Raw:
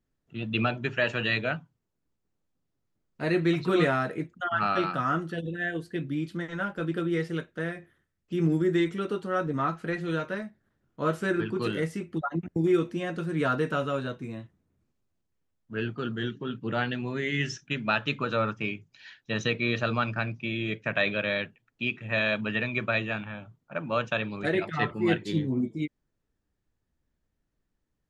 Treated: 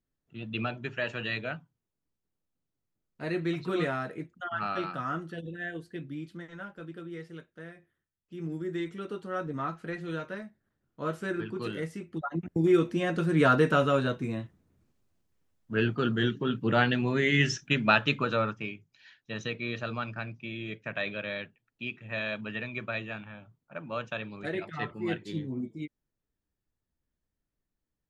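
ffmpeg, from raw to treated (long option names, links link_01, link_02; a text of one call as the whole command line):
ffmpeg -i in.wav -af "volume=11.5dB,afade=type=out:start_time=5.7:duration=1.24:silence=0.446684,afade=type=in:start_time=8.33:duration=1.01:silence=0.421697,afade=type=in:start_time=12.1:duration=1.24:silence=0.316228,afade=type=out:start_time=17.82:duration=0.91:silence=0.266073" out.wav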